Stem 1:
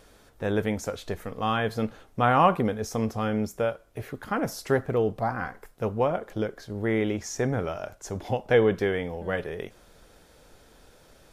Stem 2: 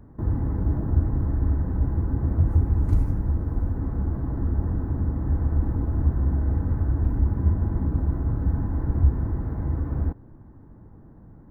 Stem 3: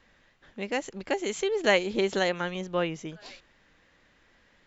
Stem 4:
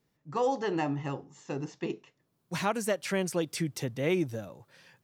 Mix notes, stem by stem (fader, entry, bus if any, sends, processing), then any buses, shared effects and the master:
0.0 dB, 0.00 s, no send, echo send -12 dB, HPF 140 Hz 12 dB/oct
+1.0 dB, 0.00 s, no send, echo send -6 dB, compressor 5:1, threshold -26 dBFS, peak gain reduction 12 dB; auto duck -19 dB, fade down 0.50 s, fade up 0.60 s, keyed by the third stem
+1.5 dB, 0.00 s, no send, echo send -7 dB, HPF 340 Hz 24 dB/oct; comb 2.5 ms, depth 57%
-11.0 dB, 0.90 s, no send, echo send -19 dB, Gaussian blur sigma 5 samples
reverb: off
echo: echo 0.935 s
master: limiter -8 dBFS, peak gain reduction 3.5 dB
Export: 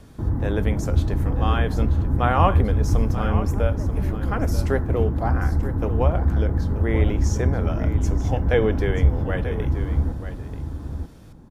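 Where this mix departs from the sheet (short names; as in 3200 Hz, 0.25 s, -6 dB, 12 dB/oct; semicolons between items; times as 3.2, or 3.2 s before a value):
stem 2: missing compressor 5:1, threshold -26 dBFS, peak gain reduction 12 dB; stem 3: muted; master: missing limiter -8 dBFS, peak gain reduction 3.5 dB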